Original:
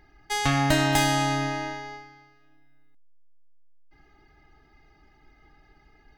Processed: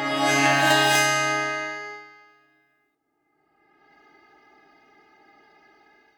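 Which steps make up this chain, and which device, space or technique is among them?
ghost voice (reverse; reverberation RT60 3.0 s, pre-delay 14 ms, DRR -5.5 dB; reverse; high-pass 350 Hz 12 dB/octave)

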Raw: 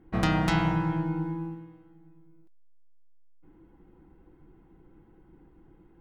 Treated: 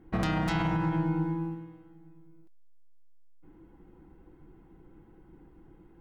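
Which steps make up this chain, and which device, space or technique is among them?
clipper into limiter (hard clipper -15 dBFS, distortion -26 dB; peak limiter -21.5 dBFS, peak gain reduction 6.5 dB); trim +1.5 dB

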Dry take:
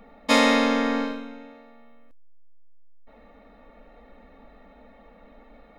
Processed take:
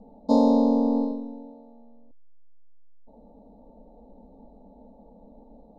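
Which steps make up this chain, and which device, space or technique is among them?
Chebyshev band-stop 930–4200 Hz, order 4; phone in a pocket (low-pass 3.8 kHz 12 dB/octave; peaking EQ 190 Hz +5.5 dB 1.2 oct; treble shelf 2.1 kHz -9 dB)

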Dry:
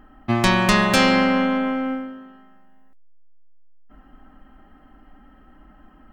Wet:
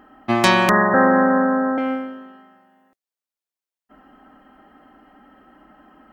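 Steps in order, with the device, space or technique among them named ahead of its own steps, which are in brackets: 0.69–1.78 s: Chebyshev low-pass 1.9 kHz, order 10; filter by subtraction (in parallel: low-pass 460 Hz 12 dB/octave + polarity flip); on the sum: trim +3 dB

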